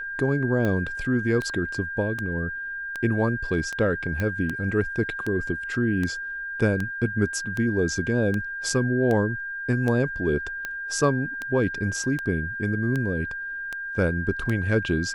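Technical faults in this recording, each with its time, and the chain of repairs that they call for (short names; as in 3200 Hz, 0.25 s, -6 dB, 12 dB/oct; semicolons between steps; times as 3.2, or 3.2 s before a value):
tick 78 rpm -16 dBFS
tone 1600 Hz -30 dBFS
4.2 pop -15 dBFS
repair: de-click; notch 1600 Hz, Q 30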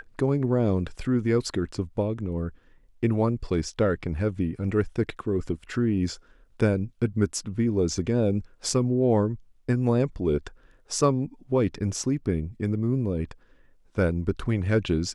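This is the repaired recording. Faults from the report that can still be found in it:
none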